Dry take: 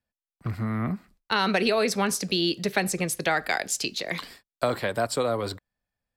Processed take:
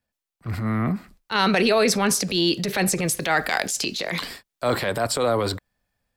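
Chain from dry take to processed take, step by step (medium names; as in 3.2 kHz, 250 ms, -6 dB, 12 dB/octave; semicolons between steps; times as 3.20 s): transient shaper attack -9 dB, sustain +5 dB; 3.04–3.66 s: added noise white -66 dBFS; trim +5 dB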